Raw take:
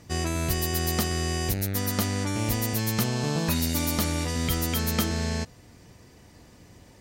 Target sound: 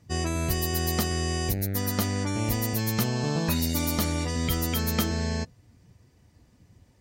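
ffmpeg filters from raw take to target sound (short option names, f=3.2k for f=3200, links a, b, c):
-af "afftdn=nr=12:nf=-39"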